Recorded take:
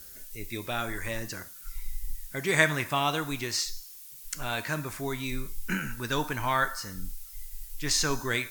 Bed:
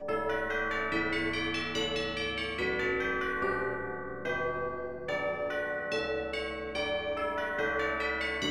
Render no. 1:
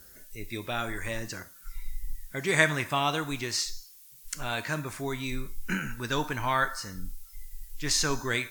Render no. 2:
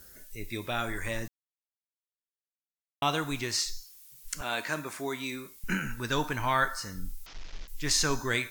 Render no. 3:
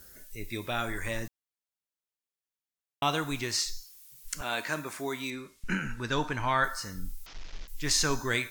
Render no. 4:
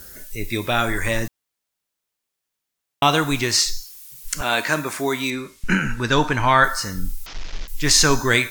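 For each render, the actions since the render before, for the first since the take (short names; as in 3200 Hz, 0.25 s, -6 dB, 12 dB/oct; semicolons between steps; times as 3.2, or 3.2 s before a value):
noise print and reduce 6 dB
1.28–3.02 mute; 4.41–5.64 HPF 230 Hz; 7.26–7.68 delta modulation 32 kbps, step -41.5 dBFS
5.3–6.64 air absorption 57 m
gain +11.5 dB; limiter -3 dBFS, peak gain reduction 2 dB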